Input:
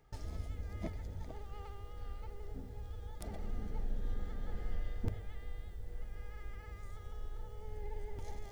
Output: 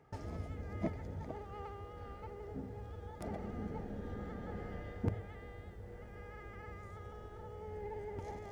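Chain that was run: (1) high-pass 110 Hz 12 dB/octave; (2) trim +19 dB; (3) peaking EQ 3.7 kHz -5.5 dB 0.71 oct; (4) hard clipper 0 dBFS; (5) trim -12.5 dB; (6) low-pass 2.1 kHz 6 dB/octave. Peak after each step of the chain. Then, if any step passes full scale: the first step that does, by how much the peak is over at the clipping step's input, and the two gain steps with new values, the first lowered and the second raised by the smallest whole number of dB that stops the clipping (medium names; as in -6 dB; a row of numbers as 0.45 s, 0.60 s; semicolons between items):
-24.0 dBFS, -5.0 dBFS, -5.5 dBFS, -5.5 dBFS, -18.0 dBFS, -19.0 dBFS; nothing clips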